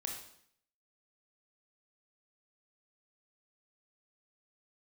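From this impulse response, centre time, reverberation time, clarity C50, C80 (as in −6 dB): 34 ms, 0.65 s, 4.5 dB, 8.0 dB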